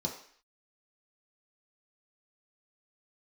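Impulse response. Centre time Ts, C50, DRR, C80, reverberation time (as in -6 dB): 24 ms, 7.5 dB, -1.5 dB, 11.0 dB, 0.55 s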